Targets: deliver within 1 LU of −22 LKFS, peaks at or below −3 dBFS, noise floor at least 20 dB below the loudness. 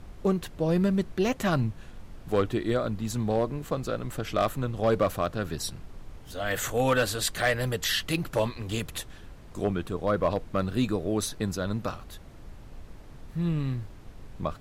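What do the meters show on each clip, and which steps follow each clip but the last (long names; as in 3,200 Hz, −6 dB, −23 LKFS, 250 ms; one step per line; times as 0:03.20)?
share of clipped samples 0.2%; peaks flattened at −16.0 dBFS; background noise floor −47 dBFS; target noise floor −49 dBFS; integrated loudness −28.5 LKFS; sample peak −16.0 dBFS; target loudness −22.0 LKFS
→ clipped peaks rebuilt −16 dBFS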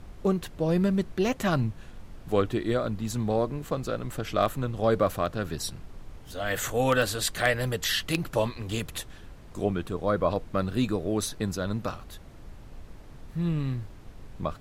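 share of clipped samples 0.0%; background noise floor −47 dBFS; target noise floor −49 dBFS
→ noise reduction from a noise print 6 dB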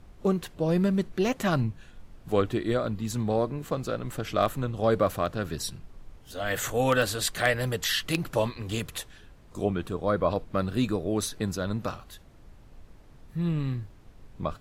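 background noise floor −52 dBFS; integrated loudness −28.5 LKFS; sample peak −7.0 dBFS; target loudness −22.0 LKFS
→ level +6.5 dB
brickwall limiter −3 dBFS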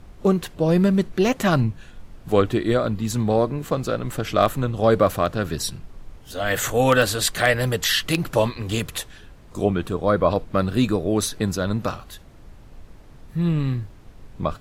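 integrated loudness −22.0 LKFS; sample peak −3.0 dBFS; background noise floor −46 dBFS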